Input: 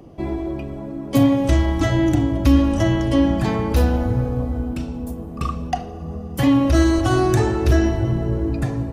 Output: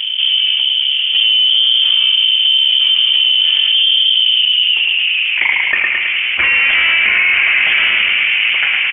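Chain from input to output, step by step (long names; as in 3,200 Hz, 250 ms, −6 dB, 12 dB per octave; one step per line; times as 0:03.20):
full-wave rectification
tuned comb filter 140 Hz, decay 0.21 s, harmonics all, mix 60%
band-pass filter sweep 210 Hz → 1,100 Hz, 0:04.02–0:05.61
repeating echo 108 ms, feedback 43%, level −6 dB
voice inversion scrambler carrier 3,300 Hz
boost into a limiter +27 dB
envelope flattener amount 70%
level −5 dB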